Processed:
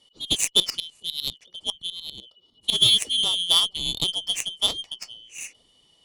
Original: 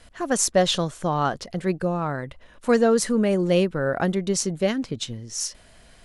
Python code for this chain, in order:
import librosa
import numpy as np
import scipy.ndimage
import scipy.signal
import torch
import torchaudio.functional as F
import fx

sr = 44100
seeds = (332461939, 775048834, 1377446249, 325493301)

y = fx.band_shuffle(x, sr, order='2413')
y = fx.tremolo_shape(y, sr, shape='saw_up', hz=10.0, depth_pct=70, at=(0.46, 2.76), fade=0.02)
y = fx.echo_wet_lowpass(y, sr, ms=452, feedback_pct=66, hz=630.0, wet_db=-18.5)
y = fx.cheby_harmonics(y, sr, harmonics=(4, 7), levels_db=(-33, -19), full_scale_db=-4.0)
y = fx.peak_eq(y, sr, hz=1500.0, db=-13.5, octaves=0.29)
y = F.gain(torch.from_numpy(y), 3.0).numpy()